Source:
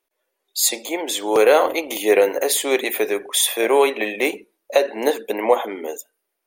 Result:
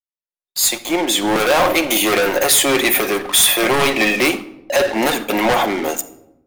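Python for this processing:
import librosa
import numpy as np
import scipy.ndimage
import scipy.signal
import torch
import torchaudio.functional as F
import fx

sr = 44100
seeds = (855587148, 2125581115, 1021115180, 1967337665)

y = fx.fade_in_head(x, sr, length_s=1.69)
y = fx.bass_treble(y, sr, bass_db=11, treble_db=-3, at=(0.82, 1.4))
y = fx.leveller(y, sr, passes=5)
y = fx.peak_eq(y, sr, hz=450.0, db=-10.5, octaves=0.42)
y = fx.room_shoebox(y, sr, seeds[0], volume_m3=2700.0, walls='furnished', distance_m=0.94)
y = y * librosa.db_to_amplitude(-5.5)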